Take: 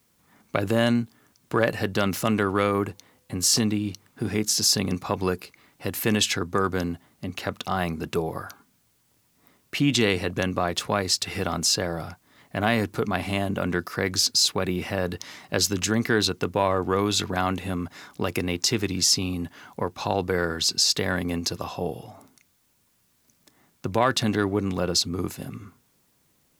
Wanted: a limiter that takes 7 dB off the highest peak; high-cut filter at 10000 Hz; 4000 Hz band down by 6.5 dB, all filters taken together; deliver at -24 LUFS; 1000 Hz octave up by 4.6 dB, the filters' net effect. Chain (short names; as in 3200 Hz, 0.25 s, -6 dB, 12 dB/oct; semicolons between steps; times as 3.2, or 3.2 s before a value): LPF 10000 Hz; bell 1000 Hz +6.5 dB; bell 4000 Hz -9 dB; gain +2.5 dB; limiter -7.5 dBFS